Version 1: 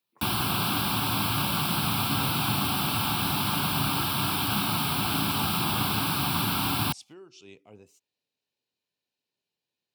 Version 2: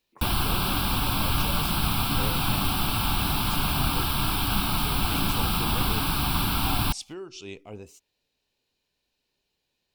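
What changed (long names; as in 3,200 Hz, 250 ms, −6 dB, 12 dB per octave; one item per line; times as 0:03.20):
speech +9.5 dB
master: remove high-pass filter 100 Hz 24 dB per octave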